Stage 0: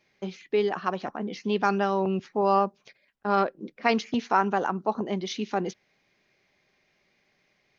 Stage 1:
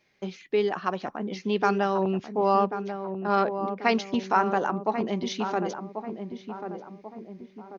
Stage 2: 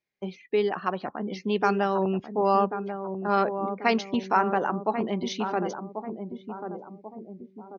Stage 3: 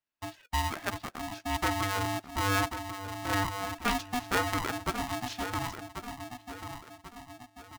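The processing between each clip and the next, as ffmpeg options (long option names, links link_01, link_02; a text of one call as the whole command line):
ffmpeg -i in.wav -filter_complex "[0:a]asplit=2[link_01][link_02];[link_02]adelay=1089,lowpass=frequency=970:poles=1,volume=-7dB,asplit=2[link_03][link_04];[link_04]adelay=1089,lowpass=frequency=970:poles=1,volume=0.51,asplit=2[link_05][link_06];[link_06]adelay=1089,lowpass=frequency=970:poles=1,volume=0.51,asplit=2[link_07][link_08];[link_08]adelay=1089,lowpass=frequency=970:poles=1,volume=0.51,asplit=2[link_09][link_10];[link_10]adelay=1089,lowpass=frequency=970:poles=1,volume=0.51,asplit=2[link_11][link_12];[link_12]adelay=1089,lowpass=frequency=970:poles=1,volume=0.51[link_13];[link_01][link_03][link_05][link_07][link_09][link_11][link_13]amix=inputs=7:normalize=0" out.wav
ffmpeg -i in.wav -af "afftdn=noise_reduction=20:noise_floor=-48" out.wav
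ffmpeg -i in.wav -af "aeval=exprs='val(0)*sgn(sin(2*PI*490*n/s))':channel_layout=same,volume=-6dB" out.wav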